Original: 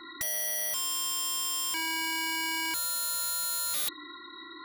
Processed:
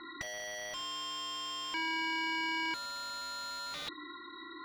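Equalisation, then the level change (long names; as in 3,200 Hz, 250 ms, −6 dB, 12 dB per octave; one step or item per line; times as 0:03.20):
high-frequency loss of the air 180 metres
0.0 dB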